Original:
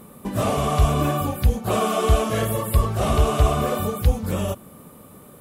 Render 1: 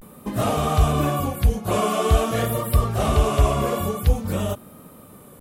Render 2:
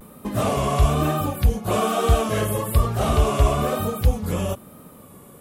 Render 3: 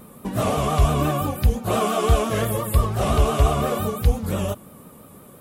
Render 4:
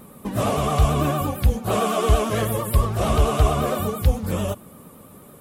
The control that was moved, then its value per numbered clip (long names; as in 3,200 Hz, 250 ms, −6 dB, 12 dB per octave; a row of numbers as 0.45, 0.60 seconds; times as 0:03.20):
pitch vibrato, speed: 0.48, 1.1, 5.8, 8.9 Hertz